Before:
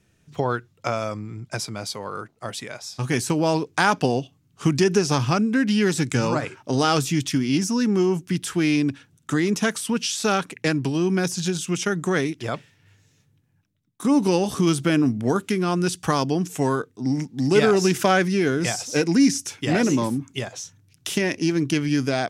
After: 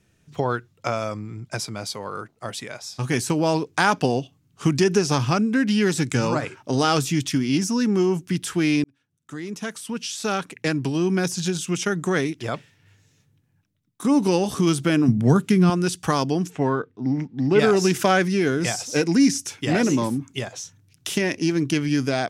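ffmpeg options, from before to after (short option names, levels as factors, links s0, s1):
-filter_complex "[0:a]asettb=1/sr,asplit=3[s0][s1][s2];[s0]atrim=end=15.084[s3];[s1]atrim=start=15.08:end=15.7,asetpts=PTS-STARTPTS,afade=t=in:d=0.004:c=qsin,afade=t=out:st=0.616:d=0.004:c=qsin,equalizer=f=150:t=o:w=0.78:g=15[s4];[s2]atrim=start=15.696[s5];[s3][s4]acrossfade=d=0.004:c1=hsin:c2=qsin[s6];[s6][s5]acrossfade=d=0.004:c1=qsin:c2=hsin,asplit=3[s7][s8][s9];[s7]afade=t=out:st=16.49:d=0.02[s10];[s8]lowpass=2700,afade=t=in:st=16.49:d=0.02,afade=t=out:st=17.58:d=0.02[s11];[s9]afade=t=in:st=17.58:d=0.02[s12];[s10][s11][s12]amix=inputs=3:normalize=0,asplit=2[s13][s14];[s13]atrim=end=8.84,asetpts=PTS-STARTPTS,afade=t=out:st=8.836:d=0.004:c=hsin[s15];[s14]atrim=start=8.84,asetpts=PTS-STARTPTS,afade=t=in:d=2.16[s16];[s15][s16]concat=n=2:v=0:a=1"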